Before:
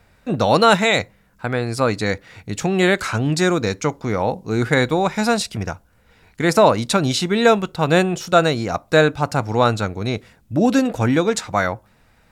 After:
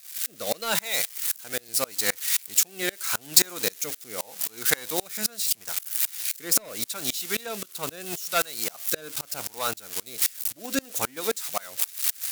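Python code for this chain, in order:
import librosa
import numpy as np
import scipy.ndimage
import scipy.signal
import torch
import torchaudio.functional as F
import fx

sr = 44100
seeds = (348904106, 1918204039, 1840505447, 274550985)

y = x + 0.5 * 10.0 ** (-12.5 / 20.0) * np.diff(np.sign(x), prepend=np.sign(x[:1]))
y = fx.highpass(y, sr, hz=400.0, slope=6)
y = np.clip(y, -10.0 ** (-10.5 / 20.0), 10.0 ** (-10.5 / 20.0))
y = fx.tilt_eq(y, sr, slope=2.0)
y = fx.transient(y, sr, attack_db=7, sustain_db=1)
y = fx.rotary_switch(y, sr, hz=0.8, then_hz=5.0, switch_at_s=9.37)
y = fx.tremolo_decay(y, sr, direction='swelling', hz=3.8, depth_db=29)
y = y * 10.0 ** (-1.0 / 20.0)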